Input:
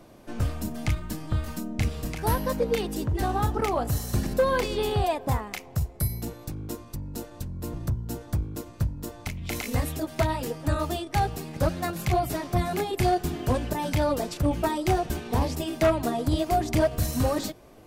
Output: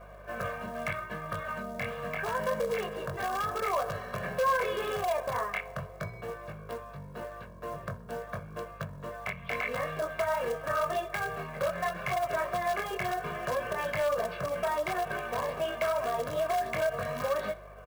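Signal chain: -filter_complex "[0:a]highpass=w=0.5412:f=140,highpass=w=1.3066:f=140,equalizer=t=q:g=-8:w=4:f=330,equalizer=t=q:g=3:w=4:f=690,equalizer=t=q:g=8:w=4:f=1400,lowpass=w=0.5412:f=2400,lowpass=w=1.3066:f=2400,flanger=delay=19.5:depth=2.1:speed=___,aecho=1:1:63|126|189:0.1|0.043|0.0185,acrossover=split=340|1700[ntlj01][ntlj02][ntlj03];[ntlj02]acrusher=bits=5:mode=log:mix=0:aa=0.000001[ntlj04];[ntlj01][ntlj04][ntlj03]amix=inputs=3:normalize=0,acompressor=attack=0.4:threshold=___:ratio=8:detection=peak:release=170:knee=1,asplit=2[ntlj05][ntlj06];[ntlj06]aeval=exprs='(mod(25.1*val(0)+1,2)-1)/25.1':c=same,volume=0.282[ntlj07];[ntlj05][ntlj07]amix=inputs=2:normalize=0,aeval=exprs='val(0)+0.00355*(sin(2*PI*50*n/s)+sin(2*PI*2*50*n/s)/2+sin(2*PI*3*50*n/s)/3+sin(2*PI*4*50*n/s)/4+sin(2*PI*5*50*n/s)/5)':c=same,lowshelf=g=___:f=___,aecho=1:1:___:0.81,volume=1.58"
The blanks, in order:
0.8, 0.0355, -11, 360, 1.8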